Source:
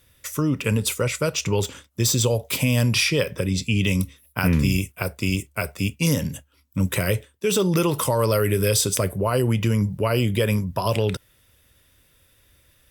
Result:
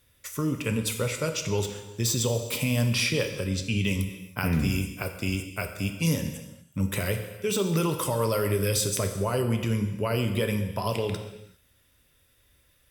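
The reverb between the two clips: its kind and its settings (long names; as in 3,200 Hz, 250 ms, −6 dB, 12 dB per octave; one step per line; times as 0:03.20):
reverb whose tail is shaped and stops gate 430 ms falling, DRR 5.5 dB
level −6 dB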